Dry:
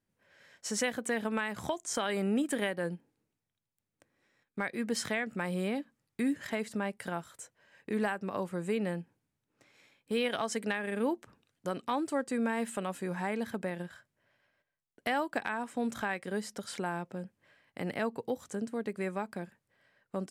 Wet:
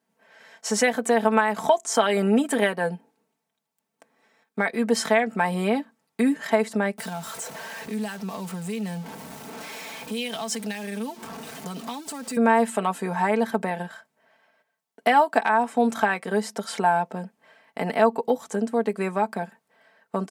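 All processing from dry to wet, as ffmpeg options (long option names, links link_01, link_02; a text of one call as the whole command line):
ffmpeg -i in.wav -filter_complex "[0:a]asettb=1/sr,asplit=3[link_01][link_02][link_03];[link_01]atrim=end=6.984[link_04];[link_02]atrim=start=6.98:end=12.37,asetpts=PTS-STARTPTS,afade=type=in:duration=0.004:curve=qsin,afade=type=out:start_time=5.386:duration=0.004:curve=qsin,aeval=exprs='val(0)+0.5*0.00841*sgn(val(0))':channel_layout=same,lowshelf=frequency=200:gain=5.5,acrossover=split=160|3000[link_05][link_06][link_07];[link_06]acompressor=threshold=-45dB:ratio=6:attack=3.2:release=140:knee=2.83:detection=peak[link_08];[link_05][link_08][link_07]amix=inputs=3:normalize=0[link_09];[link_03]atrim=start=12.366[link_10];[link_04][link_09]acrossfade=duration=0.004:curve1=hsin:curve2=qsin[link_11];[link_11][link_10]acrossfade=duration=0.004:curve1=qsin:curve2=hsin,highpass=170,equalizer=frequency=800:width_type=o:width=1.1:gain=9,aecho=1:1:4.5:0.71,volume=6dB" out.wav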